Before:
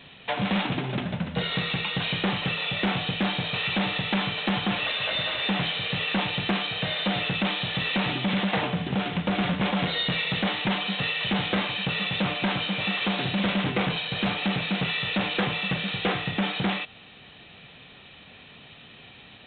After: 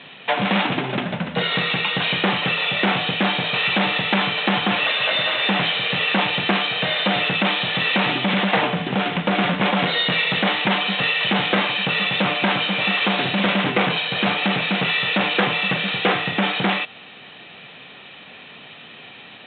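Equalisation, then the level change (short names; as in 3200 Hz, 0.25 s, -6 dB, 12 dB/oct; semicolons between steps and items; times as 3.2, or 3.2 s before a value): BPF 150–3600 Hz; low shelf 320 Hz -5.5 dB; +9.0 dB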